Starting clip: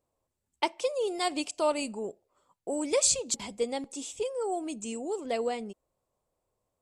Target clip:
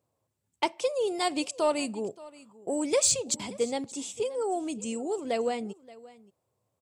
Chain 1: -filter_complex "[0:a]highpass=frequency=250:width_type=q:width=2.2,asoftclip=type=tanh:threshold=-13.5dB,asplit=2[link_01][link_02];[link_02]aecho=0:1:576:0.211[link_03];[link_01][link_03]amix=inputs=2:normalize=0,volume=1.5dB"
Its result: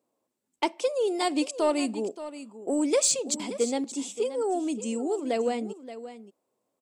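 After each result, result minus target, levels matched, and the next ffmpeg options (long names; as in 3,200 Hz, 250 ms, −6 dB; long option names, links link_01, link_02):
echo-to-direct +7 dB; 125 Hz band −3.0 dB
-filter_complex "[0:a]highpass=frequency=250:width_type=q:width=2.2,asoftclip=type=tanh:threshold=-13.5dB,asplit=2[link_01][link_02];[link_02]aecho=0:1:576:0.0944[link_03];[link_01][link_03]amix=inputs=2:normalize=0,volume=1.5dB"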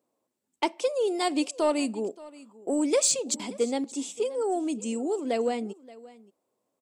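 125 Hz band −3.0 dB
-filter_complex "[0:a]highpass=frequency=110:width_type=q:width=2.2,asoftclip=type=tanh:threshold=-13.5dB,asplit=2[link_01][link_02];[link_02]aecho=0:1:576:0.0944[link_03];[link_01][link_03]amix=inputs=2:normalize=0,volume=1.5dB"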